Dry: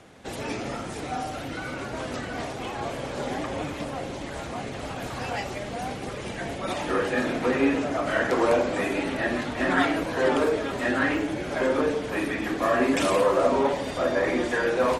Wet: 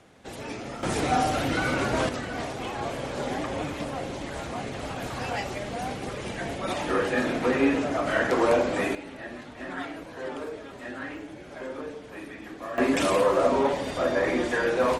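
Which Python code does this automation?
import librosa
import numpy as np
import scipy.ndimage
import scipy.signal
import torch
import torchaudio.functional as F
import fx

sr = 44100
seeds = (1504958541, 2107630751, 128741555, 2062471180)

y = fx.gain(x, sr, db=fx.steps((0.0, -4.5), (0.83, 7.5), (2.09, 0.0), (8.95, -12.5), (12.78, -0.5)))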